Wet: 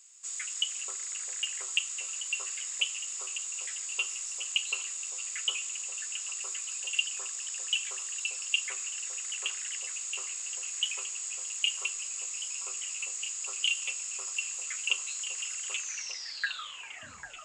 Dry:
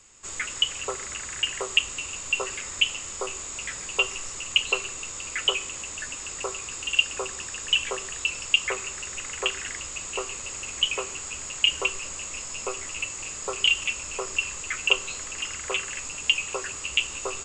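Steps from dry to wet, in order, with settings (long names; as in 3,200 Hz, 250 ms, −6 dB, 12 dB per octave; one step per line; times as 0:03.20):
turntable brake at the end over 1.70 s
first-order pre-emphasis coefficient 0.97
echo through a band-pass that steps 398 ms, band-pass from 620 Hz, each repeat 0.7 octaves, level −3 dB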